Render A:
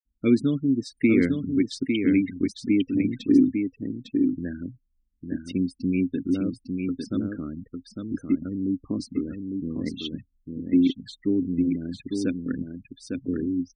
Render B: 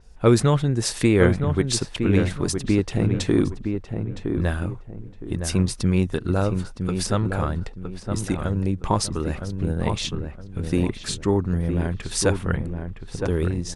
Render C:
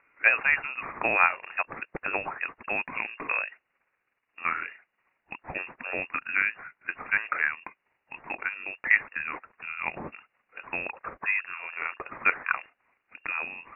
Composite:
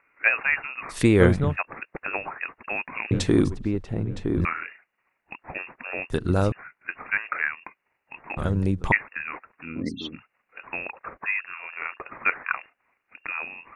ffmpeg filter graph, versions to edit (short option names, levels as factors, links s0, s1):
-filter_complex "[1:a]asplit=4[s0][s1][s2][s3];[2:a]asplit=6[s4][s5][s6][s7][s8][s9];[s4]atrim=end=0.99[s10];[s0]atrim=start=0.89:end=1.57[s11];[s5]atrim=start=1.47:end=3.112[s12];[s1]atrim=start=3.108:end=4.452[s13];[s6]atrim=start=4.448:end=6.102[s14];[s2]atrim=start=6.098:end=6.522[s15];[s7]atrim=start=6.518:end=8.372[s16];[s3]atrim=start=8.368:end=8.922[s17];[s8]atrim=start=8.918:end=9.83[s18];[0:a]atrim=start=9.59:end=10.24[s19];[s9]atrim=start=10[s20];[s10][s11]acrossfade=d=0.1:c1=tri:c2=tri[s21];[s21][s12]acrossfade=d=0.1:c1=tri:c2=tri[s22];[s22][s13]acrossfade=d=0.004:c1=hsin:c2=hsin[s23];[s23][s14]acrossfade=d=0.004:c1=hsin:c2=hsin[s24];[s24][s15]acrossfade=d=0.004:c1=hsin:c2=hsin[s25];[s25][s16]acrossfade=d=0.004:c1=hsin:c2=hsin[s26];[s26][s17]acrossfade=d=0.004:c1=hsin:c2=hsin[s27];[s27][s18]acrossfade=d=0.004:c1=hsin:c2=hsin[s28];[s28][s19]acrossfade=d=0.24:c1=tri:c2=tri[s29];[s29][s20]acrossfade=d=0.24:c1=tri:c2=tri"